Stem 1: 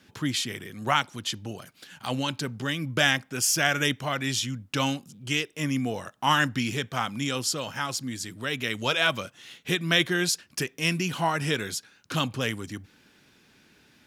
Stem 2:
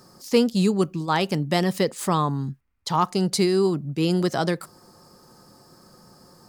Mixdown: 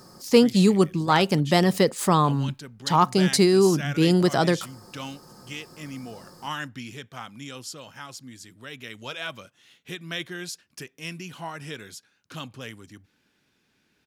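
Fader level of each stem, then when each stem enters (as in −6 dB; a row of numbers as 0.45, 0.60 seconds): −10.0, +2.5 decibels; 0.20, 0.00 seconds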